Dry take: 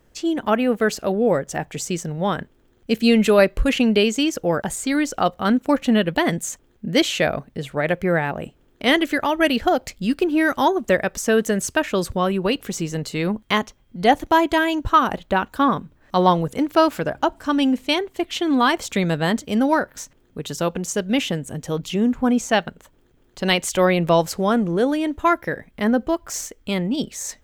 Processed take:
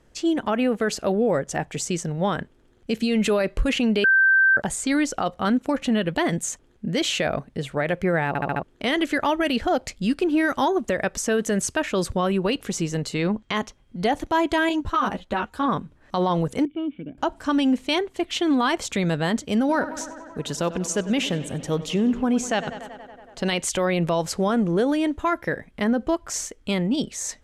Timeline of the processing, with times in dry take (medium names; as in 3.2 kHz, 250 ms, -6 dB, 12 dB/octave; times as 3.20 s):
4.04–4.57 s: bleep 1.56 kHz -8.5 dBFS
8.28 s: stutter in place 0.07 s, 5 plays
13.14–13.56 s: low-pass 7.6 kHz 24 dB/octave
14.69–15.66 s: three-phase chorus
16.65–17.18 s: cascade formant filter i
19.59–23.58 s: tape echo 95 ms, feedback 82%, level -15.5 dB, low-pass 4.6 kHz
whole clip: low-pass 11 kHz 24 dB/octave; peak limiter -13.5 dBFS